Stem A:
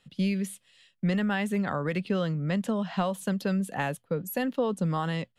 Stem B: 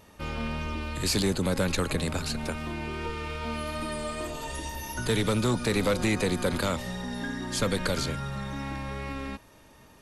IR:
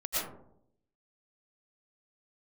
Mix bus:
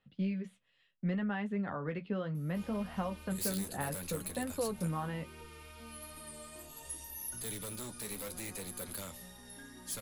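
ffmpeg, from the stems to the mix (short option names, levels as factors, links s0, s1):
-filter_complex "[0:a]lowpass=1900,volume=0.596[s0];[1:a]equalizer=f=11000:w=2.3:g=12,aeval=exprs='0.0944*(abs(mod(val(0)/0.0944+3,4)-2)-1)':c=same,adelay=2350,volume=0.188[s1];[s0][s1]amix=inputs=2:normalize=0,flanger=delay=9.1:depth=5.2:regen=-40:speed=0.68:shape=sinusoidal,aemphasis=mode=production:type=50kf"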